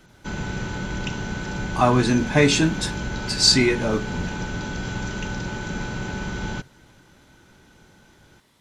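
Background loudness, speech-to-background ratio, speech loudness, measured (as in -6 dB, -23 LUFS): -30.0 LUFS, 10.0 dB, -20.0 LUFS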